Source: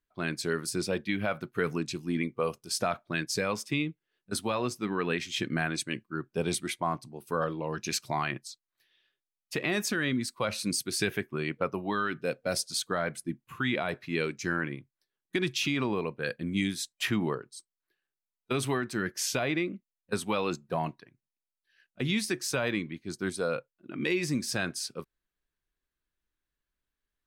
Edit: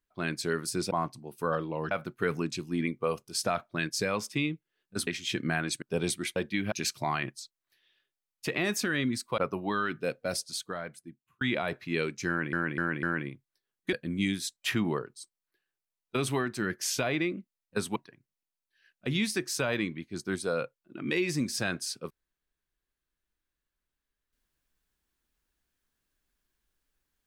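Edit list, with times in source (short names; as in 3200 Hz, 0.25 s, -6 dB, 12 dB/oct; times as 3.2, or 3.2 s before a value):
0.91–1.27 swap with 6.8–7.8
4.43–5.14 cut
5.89–6.26 cut
10.46–11.59 cut
12.23–13.62 fade out
14.49–14.74 loop, 4 plays
15.39–16.29 cut
20.32–20.9 cut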